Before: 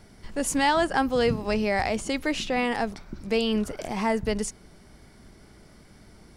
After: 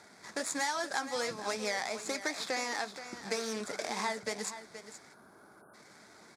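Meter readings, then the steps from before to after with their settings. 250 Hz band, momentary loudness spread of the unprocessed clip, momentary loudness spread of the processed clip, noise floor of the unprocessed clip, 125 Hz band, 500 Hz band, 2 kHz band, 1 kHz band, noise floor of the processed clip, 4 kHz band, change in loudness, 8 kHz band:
−15.5 dB, 9 LU, 11 LU, −53 dBFS, −19.0 dB, −11.0 dB, −6.0 dB, −9.0 dB, −58 dBFS, −5.5 dB, −9.0 dB, −2.5 dB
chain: running median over 15 samples
meter weighting curve ITU-R 468
time-frequency box erased 0:05.14–0:05.74, 1,700–9,100 Hz
high-pass filter 98 Hz 12 dB per octave
parametric band 2,900 Hz −14.5 dB 0.27 octaves
downward compressor 4 to 1, threshold −36 dBFS, peak gain reduction 15.5 dB
flanger 1.3 Hz, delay 2.1 ms, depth 7.6 ms, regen −63%
single-tap delay 474 ms −12 dB
level +8 dB

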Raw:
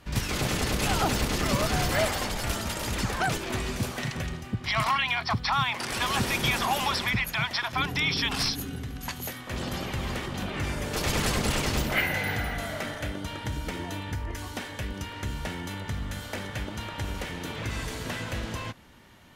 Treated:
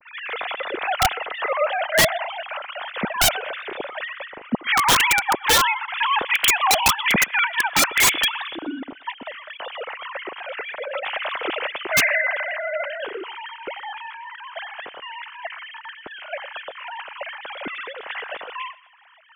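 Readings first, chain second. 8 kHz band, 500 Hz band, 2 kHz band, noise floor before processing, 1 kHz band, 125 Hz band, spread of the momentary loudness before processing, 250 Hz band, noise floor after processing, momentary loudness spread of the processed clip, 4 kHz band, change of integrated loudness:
+9.0 dB, +5.5 dB, +8.0 dB, −41 dBFS, +7.0 dB, −10.5 dB, 10 LU, −2.0 dB, −45 dBFS, 18 LU, +6.0 dB, +7.5 dB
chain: three sine waves on the formant tracks
feedback echo with a high-pass in the loop 122 ms, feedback 47%, high-pass 1,100 Hz, level −18 dB
wrap-around overflow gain 16 dB
level +6 dB

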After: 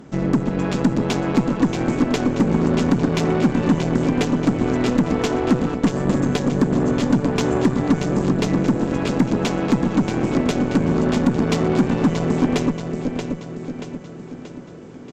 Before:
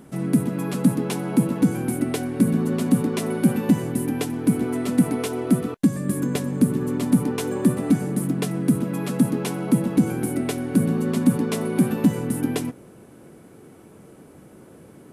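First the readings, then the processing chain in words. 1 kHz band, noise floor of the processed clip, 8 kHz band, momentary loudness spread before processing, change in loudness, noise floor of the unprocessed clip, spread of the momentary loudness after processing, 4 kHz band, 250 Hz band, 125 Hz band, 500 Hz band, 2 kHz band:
+8.0 dB, −38 dBFS, −2.0 dB, 5 LU, +2.5 dB, −48 dBFS, 10 LU, +6.5 dB, +2.5 dB, +3.0 dB, +5.5 dB, +6.5 dB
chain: downsampling to 16,000 Hz
downward compressor 4 to 1, threshold −19 dBFS, peak gain reduction 7 dB
repeating echo 631 ms, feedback 54%, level −7 dB
harmonic generator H 8 −19 dB, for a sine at −9.5 dBFS
level +4.5 dB

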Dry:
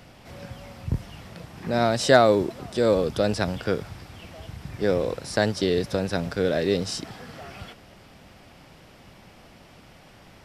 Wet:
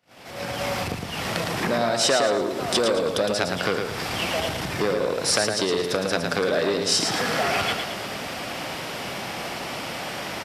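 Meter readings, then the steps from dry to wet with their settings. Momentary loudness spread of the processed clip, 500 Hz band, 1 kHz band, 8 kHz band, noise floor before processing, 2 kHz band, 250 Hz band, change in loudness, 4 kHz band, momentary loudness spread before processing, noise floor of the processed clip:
10 LU, 0.0 dB, +3.0 dB, +11.0 dB, −51 dBFS, +5.5 dB, −1.0 dB, −0.5 dB, +8.5 dB, 22 LU, −33 dBFS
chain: downward compressor 10 to 1, threshold −36 dBFS, peak gain reduction 25 dB
high-pass filter 440 Hz 6 dB per octave
repeating echo 111 ms, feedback 40%, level −5.5 dB
automatic gain control gain up to 16.5 dB
noise gate −50 dBFS, range −25 dB
saturating transformer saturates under 2,100 Hz
level +4 dB

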